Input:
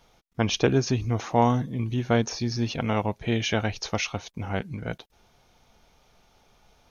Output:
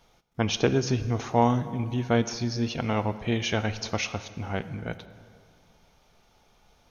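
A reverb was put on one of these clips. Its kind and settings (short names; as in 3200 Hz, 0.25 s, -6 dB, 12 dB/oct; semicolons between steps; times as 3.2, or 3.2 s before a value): plate-style reverb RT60 2.3 s, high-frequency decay 0.65×, DRR 12 dB; gain -1.5 dB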